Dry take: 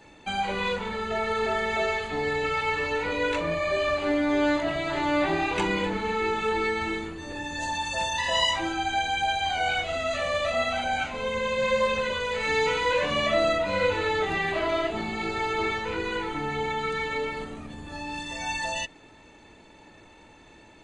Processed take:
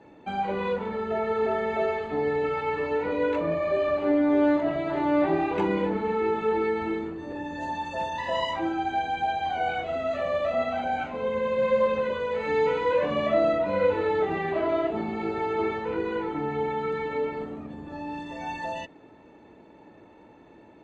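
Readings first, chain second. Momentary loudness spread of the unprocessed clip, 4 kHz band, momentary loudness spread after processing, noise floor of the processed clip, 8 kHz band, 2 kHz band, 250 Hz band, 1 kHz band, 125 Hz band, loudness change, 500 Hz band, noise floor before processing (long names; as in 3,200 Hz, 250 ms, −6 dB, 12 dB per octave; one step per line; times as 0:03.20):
7 LU, −11.5 dB, 10 LU, −52 dBFS, below −15 dB, −6.5 dB, +3.0 dB, −0.5 dB, −1.0 dB, 0.0 dB, +2.5 dB, −52 dBFS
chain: resonant band-pass 350 Hz, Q 0.58
level +3.5 dB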